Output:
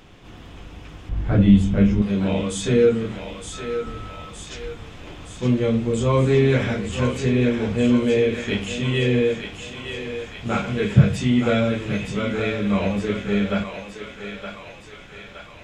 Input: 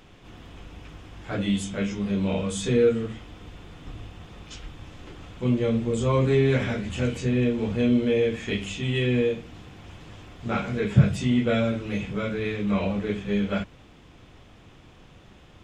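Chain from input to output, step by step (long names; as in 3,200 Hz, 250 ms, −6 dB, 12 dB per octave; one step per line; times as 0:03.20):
0:01.09–0:02.02: RIAA equalisation playback
on a send: feedback echo with a high-pass in the loop 917 ms, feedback 64%, high-pass 620 Hz, level −6 dB
0:03.52–0:04.29: on the sum: steady tone 1,300 Hz −42 dBFS
level +3.5 dB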